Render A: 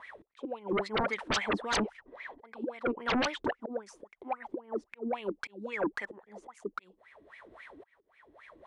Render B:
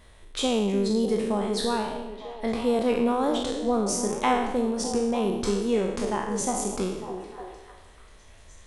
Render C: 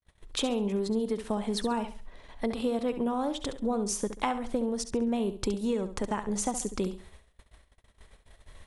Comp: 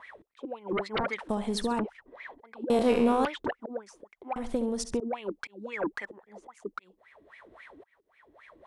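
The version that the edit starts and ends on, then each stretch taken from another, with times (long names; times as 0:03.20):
A
0:01.29–0:01.79: punch in from C
0:02.70–0:03.25: punch in from B
0:04.36–0:05.00: punch in from C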